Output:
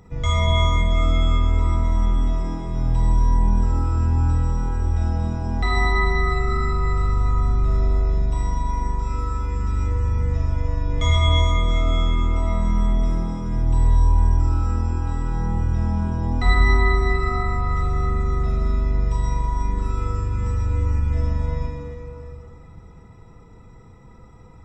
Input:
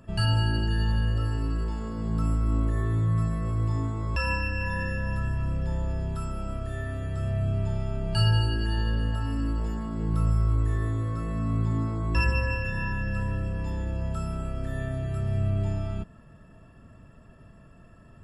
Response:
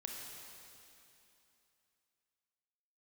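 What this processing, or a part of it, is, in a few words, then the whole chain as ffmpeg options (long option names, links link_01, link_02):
slowed and reverbed: -filter_complex "[0:a]asetrate=32634,aresample=44100[link_01];[1:a]atrim=start_sample=2205[link_02];[link_01][link_02]afir=irnorm=-1:irlink=0,volume=8dB"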